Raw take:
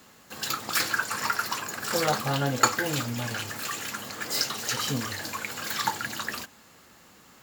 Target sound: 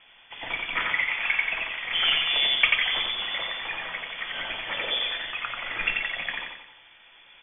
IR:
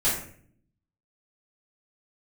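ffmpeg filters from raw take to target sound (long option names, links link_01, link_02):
-filter_complex "[0:a]lowpass=frequency=3100:width_type=q:width=0.5098,lowpass=frequency=3100:width_type=q:width=0.6013,lowpass=frequency=3100:width_type=q:width=0.9,lowpass=frequency=3100:width_type=q:width=2.563,afreqshift=-3600,aecho=1:1:89|178|267|356|445|534:0.708|0.326|0.15|0.0689|0.0317|0.0146,asplit=2[link_01][link_02];[1:a]atrim=start_sample=2205,atrim=end_sample=3087,lowshelf=frequency=140:gain=11[link_03];[link_02][link_03]afir=irnorm=-1:irlink=0,volume=-20.5dB[link_04];[link_01][link_04]amix=inputs=2:normalize=0"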